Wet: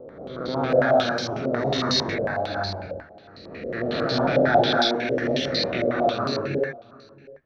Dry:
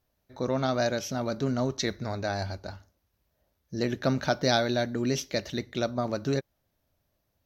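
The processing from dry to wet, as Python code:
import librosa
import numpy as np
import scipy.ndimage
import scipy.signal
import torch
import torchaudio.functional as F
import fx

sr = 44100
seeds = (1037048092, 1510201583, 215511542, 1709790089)

p1 = fx.spec_swells(x, sr, rise_s=1.42)
p2 = 10.0 ** (-15.0 / 20.0) * (np.abs((p1 / 10.0 ** (-15.0 / 20.0) + 3.0) % 4.0 - 2.0) - 1.0)
p3 = p1 + (p2 * 10.0 ** (-11.0 / 20.0))
p4 = fx.rotary_switch(p3, sr, hz=1.0, then_hz=5.0, switch_at_s=1.5)
p5 = p4 + fx.echo_single(p4, sr, ms=666, db=-22.0, dry=0)
p6 = fx.rev_gated(p5, sr, seeds[0], gate_ms=350, shape='rising', drr_db=-4.0)
p7 = fx.filter_held_lowpass(p6, sr, hz=11.0, low_hz=540.0, high_hz=4400.0)
y = p7 * 10.0 ** (-6.0 / 20.0)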